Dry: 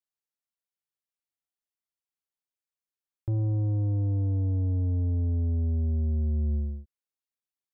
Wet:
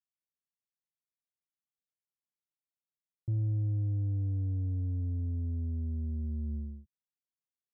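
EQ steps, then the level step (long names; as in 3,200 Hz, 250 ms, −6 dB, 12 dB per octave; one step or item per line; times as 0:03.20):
resonant band-pass 150 Hz, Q 1.7
0.0 dB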